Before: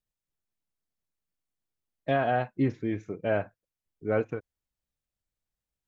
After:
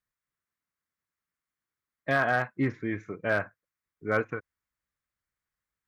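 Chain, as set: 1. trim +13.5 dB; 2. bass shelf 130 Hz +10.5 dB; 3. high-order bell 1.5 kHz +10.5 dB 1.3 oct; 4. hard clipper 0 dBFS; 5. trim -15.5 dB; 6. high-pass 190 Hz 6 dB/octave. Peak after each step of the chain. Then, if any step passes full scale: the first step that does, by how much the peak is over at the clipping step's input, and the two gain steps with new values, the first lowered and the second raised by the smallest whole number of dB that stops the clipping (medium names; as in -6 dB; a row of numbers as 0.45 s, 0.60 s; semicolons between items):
+0.5 dBFS, +0.5 dBFS, +4.5 dBFS, 0.0 dBFS, -15.5 dBFS, -13.5 dBFS; step 1, 4.5 dB; step 1 +8.5 dB, step 5 -10.5 dB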